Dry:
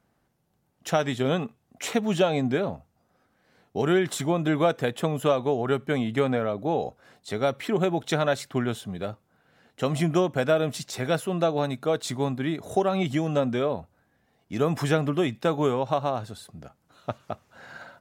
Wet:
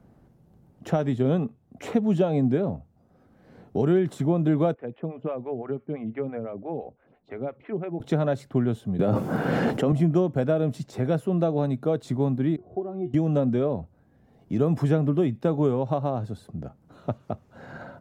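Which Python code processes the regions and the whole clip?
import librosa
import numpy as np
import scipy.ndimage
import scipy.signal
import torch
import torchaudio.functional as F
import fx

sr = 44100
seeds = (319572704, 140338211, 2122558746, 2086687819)

y = fx.chain(x, sr, fx.ladder_lowpass(hz=2800.0, resonance_pct=50),
    fx.stagger_phaser(hz=5.9), at=(4.74, 8.0))
y = fx.chain(y, sr, fx.highpass(hz=170.0, slope=12),
    fx.notch(hz=3900.0, q=15.0),
    fx.env_flatten(amount_pct=100), at=(8.99, 9.92))
y = fx.chain(y, sr, fx.lowpass(hz=1100.0, slope=12),
    fx.comb_fb(f0_hz=360.0, decay_s=0.15, harmonics='all', damping=0.0, mix_pct=90), at=(12.56, 13.14))
y = fx.tilt_shelf(y, sr, db=9.5, hz=810.0)
y = fx.band_squash(y, sr, depth_pct=40)
y = y * 10.0 ** (-4.0 / 20.0)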